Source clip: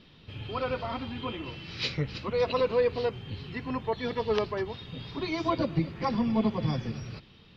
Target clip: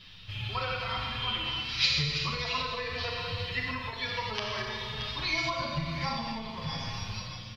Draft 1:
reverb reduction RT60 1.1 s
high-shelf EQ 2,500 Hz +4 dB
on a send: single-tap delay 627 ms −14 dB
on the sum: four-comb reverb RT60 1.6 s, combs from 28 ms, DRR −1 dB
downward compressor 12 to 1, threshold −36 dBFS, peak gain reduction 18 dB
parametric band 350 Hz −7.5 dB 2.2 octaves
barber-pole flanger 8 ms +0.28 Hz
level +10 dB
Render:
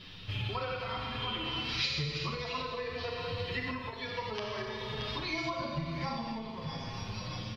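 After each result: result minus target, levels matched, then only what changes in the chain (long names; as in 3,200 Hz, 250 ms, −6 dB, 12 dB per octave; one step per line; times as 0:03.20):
downward compressor: peak gain reduction +8 dB; 250 Hz band +4.5 dB
change: downward compressor 12 to 1, threshold −27 dBFS, peak gain reduction 9.5 dB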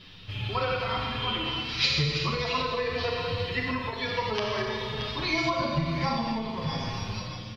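250 Hz band +5.0 dB
change: parametric band 350 Hz −19 dB 2.2 octaves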